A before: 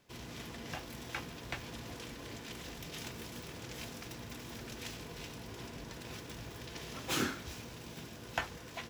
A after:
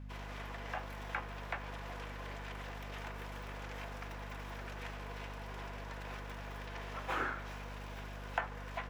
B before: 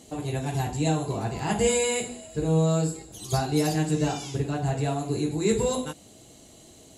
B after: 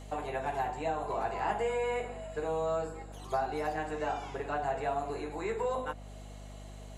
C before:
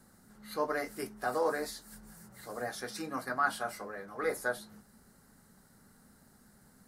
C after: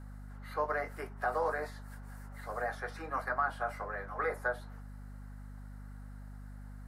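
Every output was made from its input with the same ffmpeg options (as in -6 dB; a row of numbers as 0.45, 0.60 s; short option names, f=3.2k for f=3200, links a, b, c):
-filter_complex "[0:a]acrossover=split=210|560|2000[a][b][c][d];[a]acompressor=threshold=-38dB:ratio=4[e];[b]acompressor=threshold=-34dB:ratio=4[f];[c]acompressor=threshold=-38dB:ratio=4[g];[d]acompressor=threshold=-52dB:ratio=4[h];[e][f][g][h]amix=inputs=4:normalize=0,acrossover=split=530 2500:gain=0.0708 1 0.2[i][j][k];[i][j][k]amix=inputs=3:normalize=0,aeval=exprs='val(0)+0.00251*(sin(2*PI*50*n/s)+sin(2*PI*2*50*n/s)/2+sin(2*PI*3*50*n/s)/3+sin(2*PI*4*50*n/s)/4+sin(2*PI*5*50*n/s)/5)':c=same,volume=6.5dB"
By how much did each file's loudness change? -0.5, -8.0, -0.5 LU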